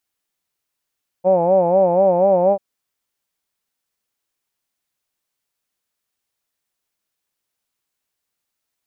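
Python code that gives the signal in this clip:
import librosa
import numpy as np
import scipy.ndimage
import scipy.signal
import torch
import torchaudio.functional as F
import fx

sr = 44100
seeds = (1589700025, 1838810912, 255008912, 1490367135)

y = fx.vowel(sr, seeds[0], length_s=1.34, word='hawed', hz=178.0, glide_st=1.0, vibrato_hz=4.1, vibrato_st=1.15)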